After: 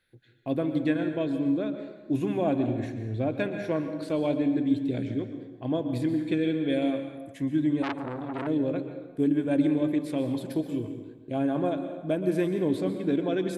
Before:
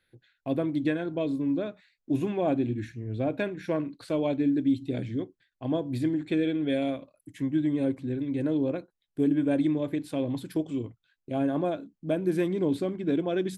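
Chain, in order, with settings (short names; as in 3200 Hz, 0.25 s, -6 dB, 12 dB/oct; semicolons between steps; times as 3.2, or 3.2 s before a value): on a send at -7.5 dB: reverb RT60 1.3 s, pre-delay 0.113 s; 7.82–8.47 on the sum: core saturation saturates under 1800 Hz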